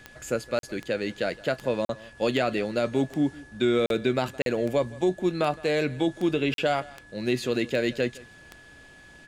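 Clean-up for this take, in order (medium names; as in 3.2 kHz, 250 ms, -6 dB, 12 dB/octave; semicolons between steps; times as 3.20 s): de-click; band-stop 1.7 kHz, Q 30; interpolate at 0.59/1.85/3.86/4.42/6.54 s, 42 ms; inverse comb 165 ms -21.5 dB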